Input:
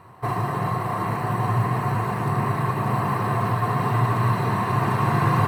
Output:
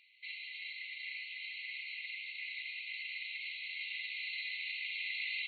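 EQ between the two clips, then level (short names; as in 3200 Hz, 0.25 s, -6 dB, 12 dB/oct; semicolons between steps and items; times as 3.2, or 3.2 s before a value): brick-wall FIR band-pass 2000–4400 Hz; +2.0 dB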